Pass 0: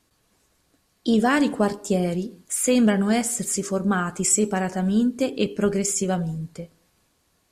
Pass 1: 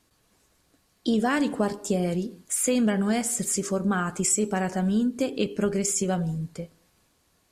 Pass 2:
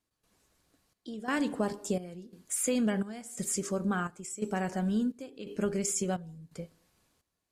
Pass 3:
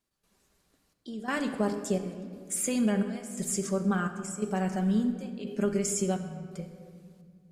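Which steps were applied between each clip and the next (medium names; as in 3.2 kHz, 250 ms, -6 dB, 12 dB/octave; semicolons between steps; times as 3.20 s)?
compression 2:1, threshold -23 dBFS, peak gain reduction 5 dB
trance gate "..xxxxxx." 129 bpm -12 dB; trim -5.5 dB
simulated room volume 4000 m³, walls mixed, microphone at 1.2 m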